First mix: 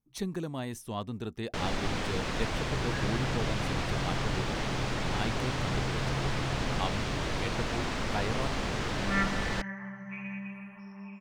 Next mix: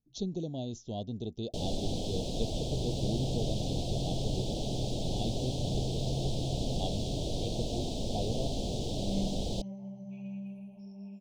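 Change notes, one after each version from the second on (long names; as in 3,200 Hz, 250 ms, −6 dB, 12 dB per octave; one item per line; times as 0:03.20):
speech: add linear-phase brick-wall low-pass 7,300 Hz
master: add elliptic band-stop filter 690–3,400 Hz, stop band 60 dB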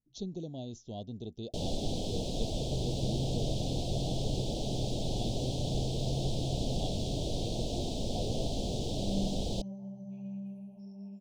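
speech −4.0 dB
second sound: add parametric band 2,200 Hz −13 dB 1.2 octaves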